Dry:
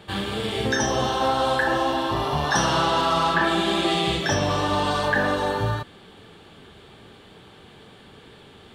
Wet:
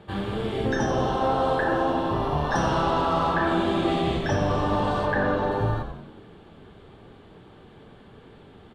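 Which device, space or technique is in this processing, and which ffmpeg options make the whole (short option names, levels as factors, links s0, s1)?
through cloth: -filter_complex "[0:a]asplit=3[s0][s1][s2];[s0]afade=t=out:st=5.05:d=0.02[s3];[s1]lowpass=5300,afade=t=in:st=5.05:d=0.02,afade=t=out:st=5.5:d=0.02[s4];[s2]afade=t=in:st=5.5:d=0.02[s5];[s3][s4][s5]amix=inputs=3:normalize=0,highshelf=f=2100:g=-15,asplit=7[s6][s7][s8][s9][s10][s11][s12];[s7]adelay=90,afreqshift=-85,volume=0.376[s13];[s8]adelay=180,afreqshift=-170,volume=0.202[s14];[s9]adelay=270,afreqshift=-255,volume=0.11[s15];[s10]adelay=360,afreqshift=-340,volume=0.0589[s16];[s11]adelay=450,afreqshift=-425,volume=0.032[s17];[s12]adelay=540,afreqshift=-510,volume=0.0172[s18];[s6][s13][s14][s15][s16][s17][s18]amix=inputs=7:normalize=0"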